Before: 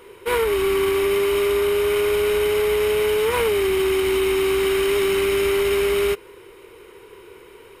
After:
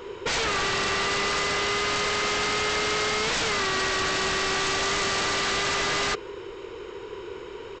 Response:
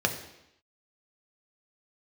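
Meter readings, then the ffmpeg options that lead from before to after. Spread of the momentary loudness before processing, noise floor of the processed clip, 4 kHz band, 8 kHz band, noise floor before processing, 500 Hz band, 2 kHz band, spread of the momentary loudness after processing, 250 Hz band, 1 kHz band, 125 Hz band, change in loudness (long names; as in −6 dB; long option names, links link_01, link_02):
1 LU, −40 dBFS, +3.0 dB, +3.5 dB, −46 dBFS, −13.0 dB, +2.0 dB, 15 LU, −8.5 dB, +2.5 dB, −2.5 dB, −4.5 dB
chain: -af "equalizer=frequency=2200:width_type=o:width=0.44:gain=-6,aresample=16000,aeval=exprs='0.0422*(abs(mod(val(0)/0.0422+3,4)-2)-1)':channel_layout=same,aresample=44100,volume=6.5dB"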